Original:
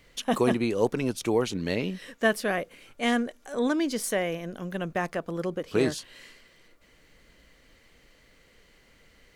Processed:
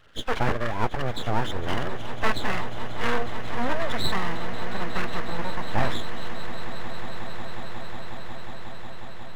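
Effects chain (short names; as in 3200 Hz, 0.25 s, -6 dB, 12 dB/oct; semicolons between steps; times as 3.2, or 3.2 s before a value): nonlinear frequency compression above 1200 Hz 4:1; full-wave rectifier; swelling echo 0.181 s, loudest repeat 8, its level -16.5 dB; gain +2 dB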